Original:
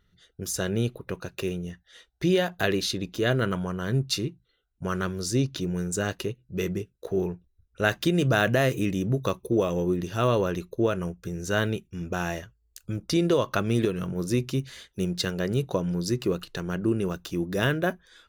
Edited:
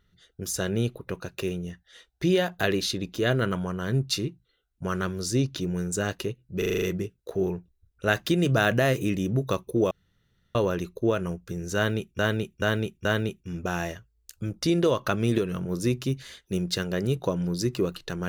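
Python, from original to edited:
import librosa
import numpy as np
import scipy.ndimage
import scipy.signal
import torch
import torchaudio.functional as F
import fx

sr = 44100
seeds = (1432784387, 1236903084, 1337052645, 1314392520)

y = fx.edit(x, sr, fx.stutter(start_s=6.58, slice_s=0.04, count=7),
    fx.room_tone_fill(start_s=9.67, length_s=0.64),
    fx.repeat(start_s=11.52, length_s=0.43, count=4), tone=tone)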